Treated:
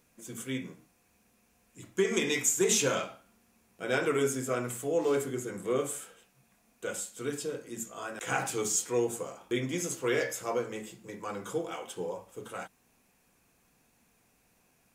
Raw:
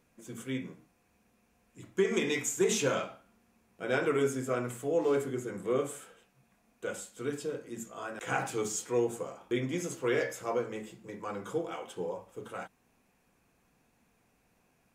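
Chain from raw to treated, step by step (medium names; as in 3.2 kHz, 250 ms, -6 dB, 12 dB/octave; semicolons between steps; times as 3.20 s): treble shelf 3.7 kHz +8.5 dB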